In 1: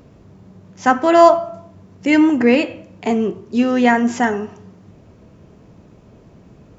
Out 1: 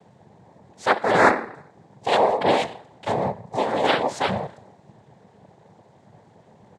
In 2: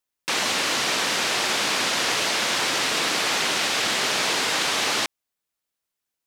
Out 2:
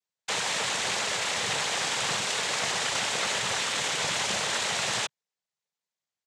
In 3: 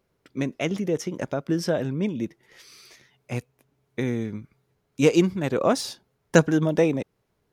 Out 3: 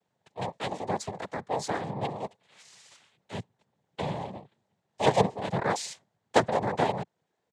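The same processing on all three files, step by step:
ring modulation 250 Hz
comb filter 1.5 ms, depth 50%
cochlear-implant simulation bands 6
level −2.5 dB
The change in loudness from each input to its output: −6.5, −5.5, −5.5 LU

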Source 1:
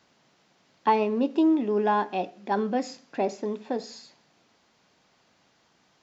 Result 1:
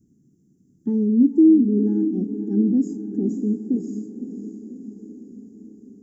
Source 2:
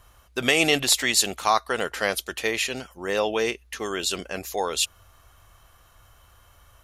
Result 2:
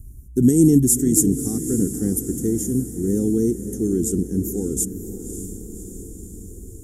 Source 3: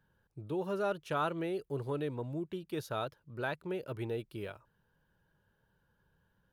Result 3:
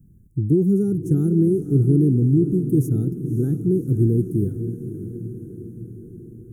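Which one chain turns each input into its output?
inverse Chebyshev band-stop filter 570–4,400 Hz, stop band 40 dB
high-shelf EQ 2,100 Hz −10.5 dB
feedback delay with all-pass diffusion 573 ms, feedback 61%, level −10.5 dB
loudness normalisation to −20 LKFS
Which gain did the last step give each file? +12.0, +17.0, +24.0 decibels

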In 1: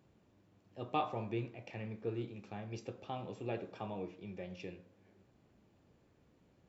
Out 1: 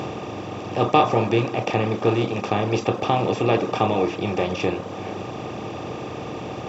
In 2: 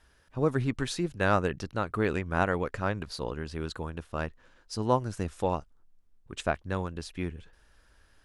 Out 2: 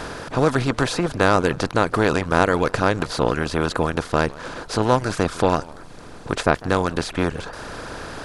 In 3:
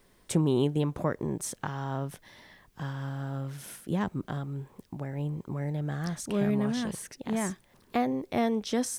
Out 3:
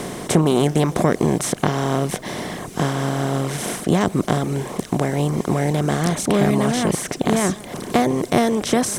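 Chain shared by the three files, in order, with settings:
compressor on every frequency bin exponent 0.4
reverb reduction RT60 0.71 s
feedback echo with a swinging delay time 156 ms, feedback 32%, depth 201 cents, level −21 dB
normalise the peak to −1.5 dBFS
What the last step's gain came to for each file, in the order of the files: +16.5, +5.0, +7.5 decibels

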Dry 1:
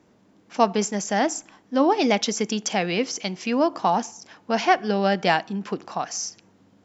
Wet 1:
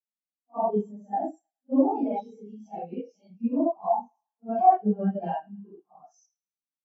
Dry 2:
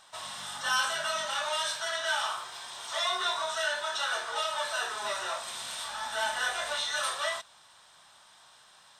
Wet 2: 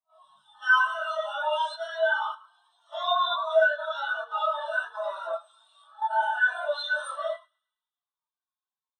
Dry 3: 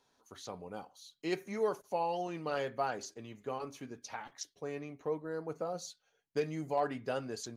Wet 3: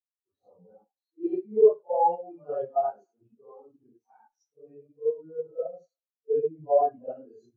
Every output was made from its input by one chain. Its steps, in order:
random phases in long frames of 200 ms
parametric band 5,700 Hz −3.5 dB 1.2 octaves
in parallel at +3 dB: output level in coarse steps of 12 dB
on the sum: parametric band 2,000 Hz −6.5 dB 0.35 octaves
feedback echo with a high-pass in the loop 107 ms, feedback 77%, high-pass 740 Hz, level −14 dB
every bin expanded away from the loudest bin 2.5 to 1
loudness normalisation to −27 LKFS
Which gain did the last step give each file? −4.0, +2.5, +7.5 decibels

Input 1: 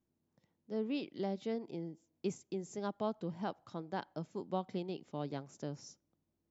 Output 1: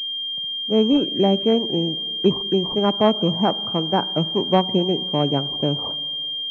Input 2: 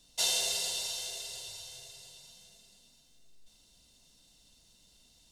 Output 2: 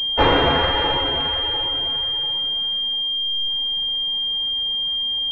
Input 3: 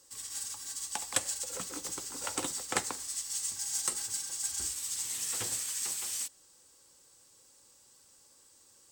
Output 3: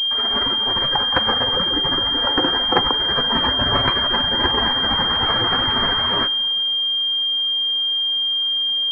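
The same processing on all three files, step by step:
four-comb reverb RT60 2.4 s, DRR 17 dB
spectral peaks only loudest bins 64
switching amplifier with a slow clock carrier 3,200 Hz
normalise the peak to −3 dBFS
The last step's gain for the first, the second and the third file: +19.5, +21.0, +18.0 decibels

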